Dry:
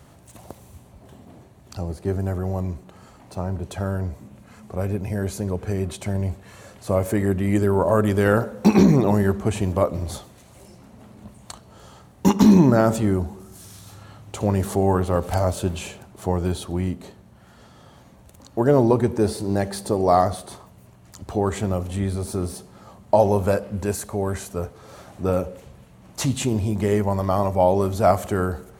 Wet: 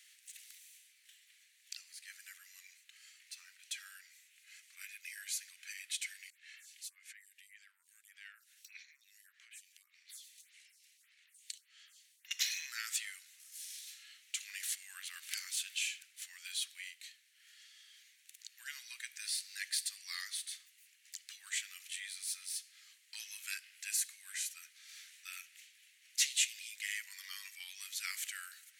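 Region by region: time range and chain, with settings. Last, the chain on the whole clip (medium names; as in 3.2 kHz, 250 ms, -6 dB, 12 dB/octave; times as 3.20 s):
6.30–12.31 s: compression 4:1, threshold -33 dBFS + lamp-driven phase shifter 1.7 Hz
whole clip: steep high-pass 1.9 kHz 48 dB/octave; treble shelf 11 kHz -5 dB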